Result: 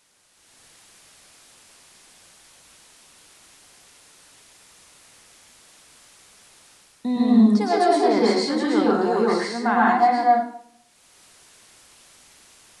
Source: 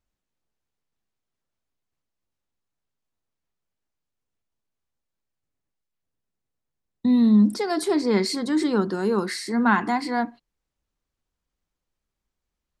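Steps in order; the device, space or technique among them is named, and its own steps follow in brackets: filmed off a television (BPF 270–7000 Hz; bell 710 Hz +8 dB 0.54 oct; reverb RT60 0.60 s, pre-delay 0.106 s, DRR -5.5 dB; white noise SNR 34 dB; AGC gain up to 11 dB; gain -5.5 dB; AAC 96 kbps 24000 Hz)

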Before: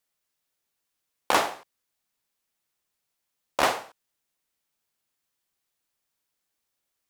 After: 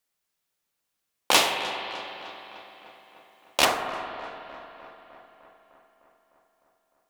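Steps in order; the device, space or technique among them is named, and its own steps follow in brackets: dub delay into a spring reverb (darkening echo 0.303 s, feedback 69%, low-pass 4100 Hz, level -16 dB; spring tank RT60 3.2 s, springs 44/57 ms, chirp 35 ms, DRR 5 dB); 1.31–3.65 resonant high shelf 2100 Hz +8 dB, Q 1.5

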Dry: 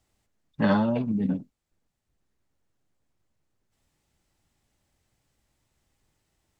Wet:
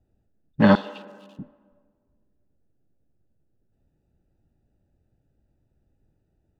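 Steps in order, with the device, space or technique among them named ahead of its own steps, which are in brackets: Wiener smoothing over 41 samples; 0.75–1.39 steep high-pass 2600 Hz 96 dB/oct; filtered reverb send (on a send: HPF 280 Hz 24 dB/oct + LPF 3400 Hz + reverb RT60 1.7 s, pre-delay 32 ms, DRR 16 dB); on the sum: gain +7 dB

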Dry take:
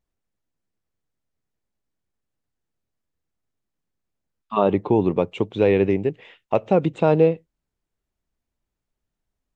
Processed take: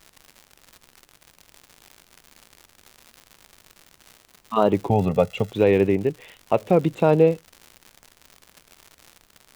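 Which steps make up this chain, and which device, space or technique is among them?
warped LP (record warp 33 1/3 rpm, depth 100 cents; crackle 140/s -32 dBFS; pink noise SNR 38 dB); 4.9–5.52 comb 1.5 ms, depth 88%

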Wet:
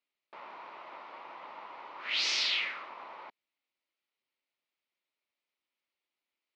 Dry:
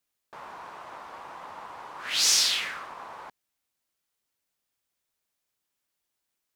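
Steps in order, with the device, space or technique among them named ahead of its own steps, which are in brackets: phone earpiece (speaker cabinet 340–3900 Hz, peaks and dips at 460 Hz -5 dB, 750 Hz -6 dB, 1100 Hz -4 dB, 1600 Hz -9 dB, 2200 Hz +3 dB, 3400 Hz -3 dB)

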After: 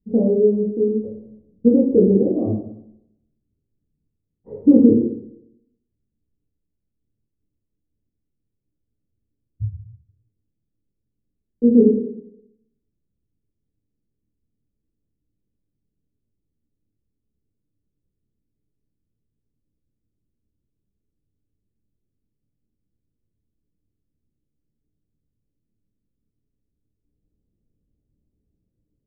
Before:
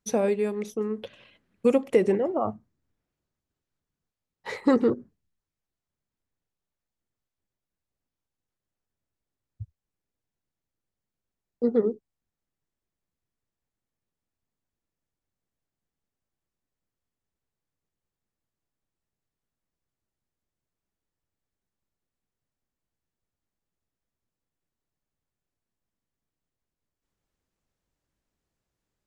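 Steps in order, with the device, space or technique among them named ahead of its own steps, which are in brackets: next room (LPF 380 Hz 24 dB/oct; reverb RT60 0.75 s, pre-delay 3 ms, DRR -5 dB); gain +6.5 dB

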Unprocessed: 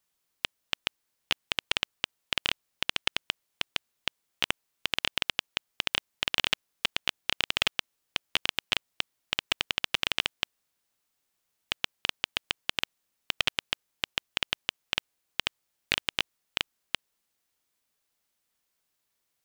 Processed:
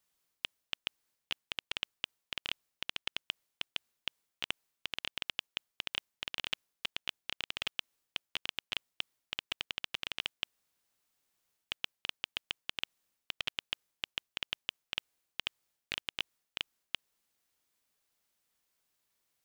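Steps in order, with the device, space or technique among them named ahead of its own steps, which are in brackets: compression on the reversed sound (reverse; compressor 5:1, threshold -32 dBFS, peak gain reduction 11 dB; reverse); gain -1 dB

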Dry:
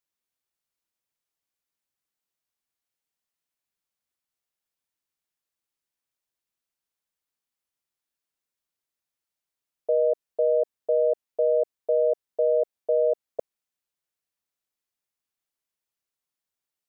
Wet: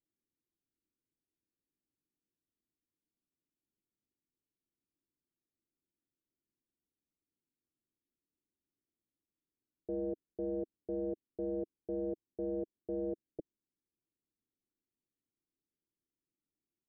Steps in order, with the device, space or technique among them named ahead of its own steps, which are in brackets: overdriven synthesiser ladder filter (soft clip -32 dBFS, distortion -6 dB; ladder low-pass 370 Hz, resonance 50%); gain +12 dB

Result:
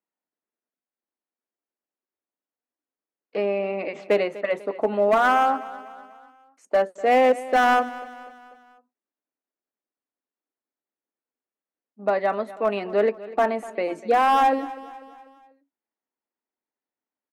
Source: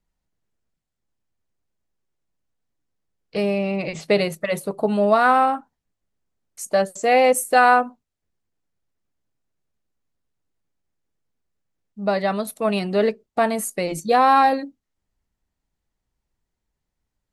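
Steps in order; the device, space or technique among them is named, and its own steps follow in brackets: walkie-talkie (BPF 440–2800 Hz; hard clip -14.5 dBFS, distortion -11 dB; gate -49 dBFS, range -6 dB); graphic EQ 125/250/4000 Hz -11/+10/-6 dB; feedback echo 0.246 s, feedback 49%, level -17.5 dB

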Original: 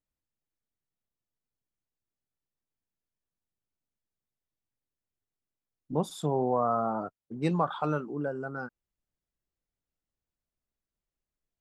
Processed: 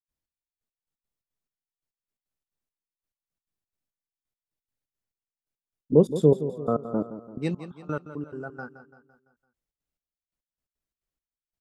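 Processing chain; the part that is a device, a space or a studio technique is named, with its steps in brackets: 5.92–7.38 resonant low shelf 600 Hz +9 dB, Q 3; trance gate with a delay (step gate ".xx....x..x.xx" 173 bpm -24 dB; feedback echo 0.169 s, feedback 49%, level -12.5 dB)

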